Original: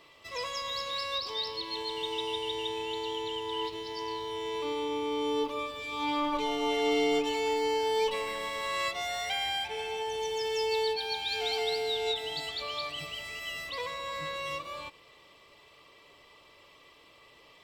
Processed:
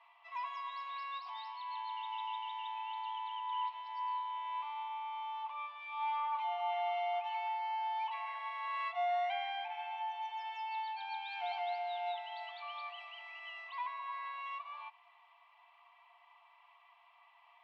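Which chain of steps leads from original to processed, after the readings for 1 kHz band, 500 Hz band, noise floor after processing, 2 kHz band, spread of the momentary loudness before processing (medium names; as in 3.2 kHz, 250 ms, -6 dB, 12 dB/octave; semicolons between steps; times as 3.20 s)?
-0.5 dB, -13.5 dB, -65 dBFS, -8.5 dB, 7 LU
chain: low-pass 1.2 kHz 12 dB/octave; in parallel at -1 dB: peak limiter -27.5 dBFS, peak gain reduction 8.5 dB; on the sum: rippled Chebyshev high-pass 680 Hz, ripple 9 dB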